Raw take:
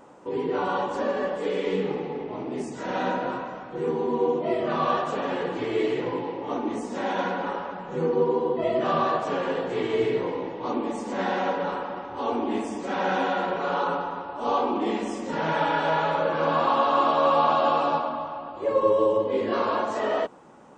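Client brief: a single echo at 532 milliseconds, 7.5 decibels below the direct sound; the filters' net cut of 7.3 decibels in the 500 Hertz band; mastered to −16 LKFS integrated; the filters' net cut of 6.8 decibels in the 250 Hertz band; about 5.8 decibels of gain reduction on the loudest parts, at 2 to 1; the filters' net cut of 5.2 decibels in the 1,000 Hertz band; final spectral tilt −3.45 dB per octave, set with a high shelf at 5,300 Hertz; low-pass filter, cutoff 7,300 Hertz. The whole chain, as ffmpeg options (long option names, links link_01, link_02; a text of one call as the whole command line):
ffmpeg -i in.wav -af "lowpass=7300,equalizer=frequency=250:width_type=o:gain=-6.5,equalizer=frequency=500:width_type=o:gain=-6,equalizer=frequency=1000:width_type=o:gain=-4,highshelf=frequency=5300:gain=-7,acompressor=threshold=-33dB:ratio=2,aecho=1:1:532:0.422,volume=18.5dB" out.wav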